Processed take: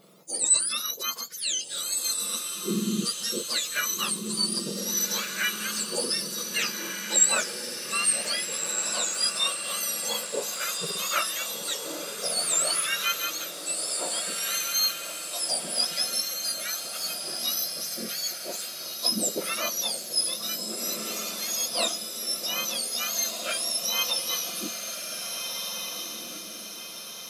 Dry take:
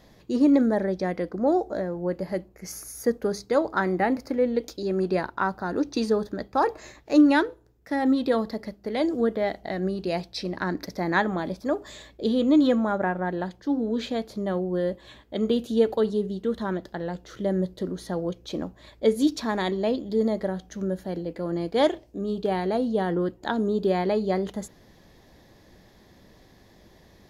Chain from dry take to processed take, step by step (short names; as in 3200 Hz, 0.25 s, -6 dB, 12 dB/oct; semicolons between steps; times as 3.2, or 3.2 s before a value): spectrum mirrored in octaves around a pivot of 1500 Hz; harmonic-percussive split harmonic +3 dB; diffused feedback echo 1.641 s, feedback 49%, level -5 dB